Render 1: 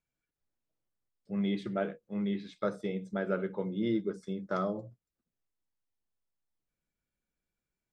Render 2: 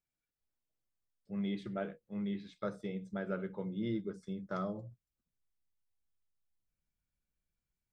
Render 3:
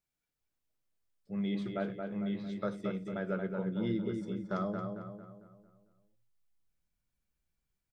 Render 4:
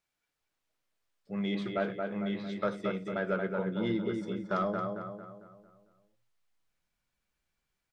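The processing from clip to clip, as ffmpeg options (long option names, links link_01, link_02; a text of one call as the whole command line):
ffmpeg -i in.wav -af "asubboost=boost=2.5:cutoff=180,volume=-5.5dB" out.wav
ffmpeg -i in.wav -filter_complex "[0:a]asplit=2[link_01][link_02];[link_02]adelay=225,lowpass=frequency=2800:poles=1,volume=-4.5dB,asplit=2[link_03][link_04];[link_04]adelay=225,lowpass=frequency=2800:poles=1,volume=0.46,asplit=2[link_05][link_06];[link_06]adelay=225,lowpass=frequency=2800:poles=1,volume=0.46,asplit=2[link_07][link_08];[link_08]adelay=225,lowpass=frequency=2800:poles=1,volume=0.46,asplit=2[link_09][link_10];[link_10]adelay=225,lowpass=frequency=2800:poles=1,volume=0.46,asplit=2[link_11][link_12];[link_12]adelay=225,lowpass=frequency=2800:poles=1,volume=0.46[link_13];[link_01][link_03][link_05][link_07][link_09][link_11][link_13]amix=inputs=7:normalize=0,volume=2dB" out.wav
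ffmpeg -i in.wav -filter_complex "[0:a]asplit=2[link_01][link_02];[link_02]highpass=frequency=720:poles=1,volume=10dB,asoftclip=type=tanh:threshold=-22dB[link_03];[link_01][link_03]amix=inputs=2:normalize=0,lowpass=frequency=3400:poles=1,volume=-6dB,volume=3.5dB" out.wav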